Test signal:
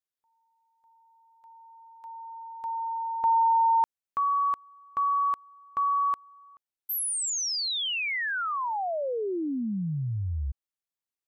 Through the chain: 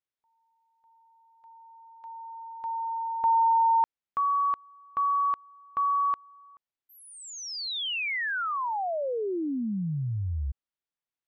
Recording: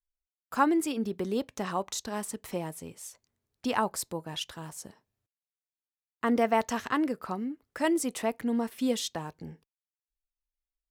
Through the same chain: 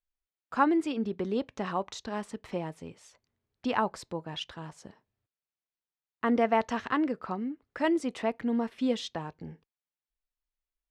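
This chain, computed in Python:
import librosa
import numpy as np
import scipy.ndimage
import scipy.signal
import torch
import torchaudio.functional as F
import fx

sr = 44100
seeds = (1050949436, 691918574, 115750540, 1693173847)

y = scipy.signal.sosfilt(scipy.signal.butter(2, 3800.0, 'lowpass', fs=sr, output='sos'), x)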